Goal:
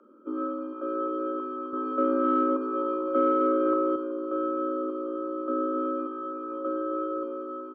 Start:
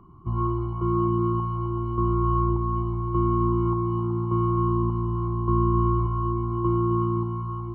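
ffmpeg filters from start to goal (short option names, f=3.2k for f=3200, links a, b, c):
-filter_complex "[0:a]afreqshift=200,aecho=1:1:45|123|173|455|576:0.266|0.133|0.15|0.188|0.251,asettb=1/sr,asplit=3[a][b][c];[a]atrim=end=1.734[d];[b]atrim=start=1.73:end=3.96,asetpts=PTS-STARTPTS,afade=t=in:d=0.004:c=qsin,afade=t=out:st=2.226:d=0.004:c=qsin,acontrast=68[e];[c]atrim=start=3.956[f];[d][e]acrossfade=d=0.004:c1=hsin:c2=qsin[g];[g][f]acrossfade=d=0.004:c1=qsin:c2=hsin,volume=-6dB"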